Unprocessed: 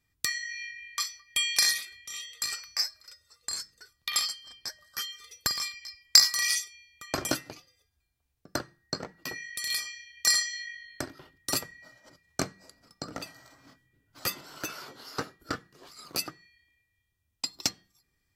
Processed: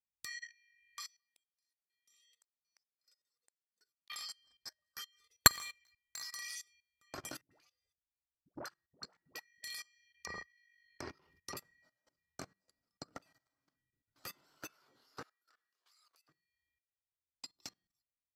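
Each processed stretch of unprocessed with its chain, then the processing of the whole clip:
1.07–4.1 HPF 160 Hz 24 dB/oct + flipped gate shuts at -27 dBFS, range -40 dB + bell 1500 Hz -6.5 dB 2.7 oct
5.44–6.23 sample leveller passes 1 + negative-ratio compressor -21 dBFS + Butterworth band-stop 5100 Hz, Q 3.6
7.41–9.64 dispersion highs, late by 0.103 s, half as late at 540 Hz + core saturation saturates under 1300 Hz
10.16–11.57 treble ducked by the level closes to 590 Hz, closed at -23 dBFS + ripple EQ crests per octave 0.82, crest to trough 7 dB + sustainer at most 60 dB/s
15.23–16.29 HPF 1000 Hz + compressor 5:1, threshold -47 dBFS
whole clip: dynamic EQ 1100 Hz, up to +3 dB, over -46 dBFS, Q 0.82; level quantiser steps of 18 dB; upward expander 1.5:1, over -54 dBFS

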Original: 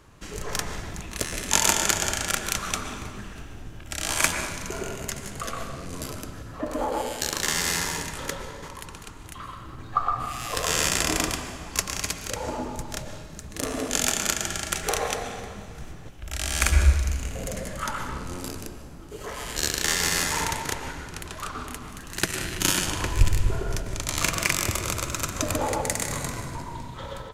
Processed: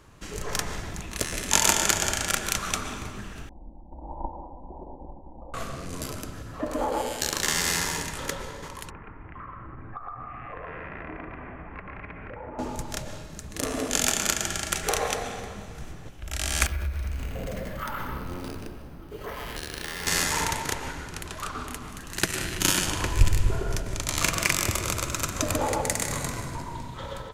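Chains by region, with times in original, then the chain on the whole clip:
3.49–5.54 minimum comb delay 2.3 ms + steep low-pass 990 Hz 72 dB/oct + fixed phaser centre 420 Hz, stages 6
8.9–12.59 steep low-pass 2300 Hz 48 dB/oct + compressor 4:1, threshold -36 dBFS
16.66–20.07 compressor, threshold -26 dBFS + air absorption 120 m + careless resampling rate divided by 3×, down filtered, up hold
whole clip: dry

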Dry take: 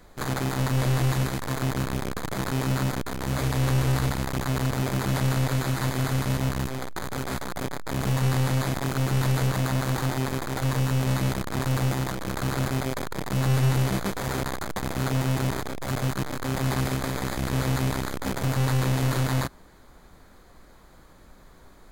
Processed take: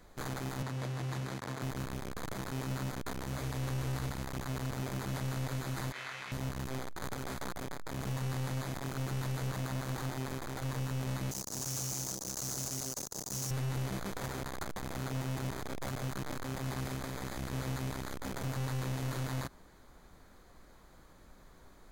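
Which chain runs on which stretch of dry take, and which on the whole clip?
0.62–1.62 HPF 90 Hz 24 dB/oct + high shelf 9700 Hz -11 dB
5.92–6.32 band-pass 2200 Hz, Q 1.4 + doubler 21 ms -2 dB
11.31–13.51 HPF 170 Hz 6 dB/oct + resonant high shelf 4100 Hz +14 dB, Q 3 + tube stage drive 28 dB, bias 0.4
whole clip: bell 6100 Hz +2.5 dB 0.26 oct; limiter -23 dBFS; gain -6 dB

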